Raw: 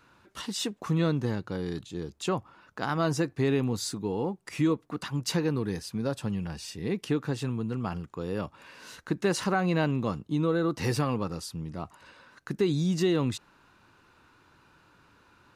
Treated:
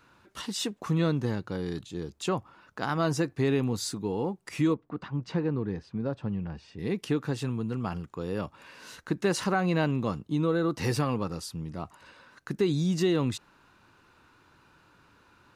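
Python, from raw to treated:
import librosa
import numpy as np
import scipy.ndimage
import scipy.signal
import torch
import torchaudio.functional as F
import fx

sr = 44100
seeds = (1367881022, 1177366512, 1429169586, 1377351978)

y = fx.spacing_loss(x, sr, db_at_10k=32, at=(4.74, 6.79))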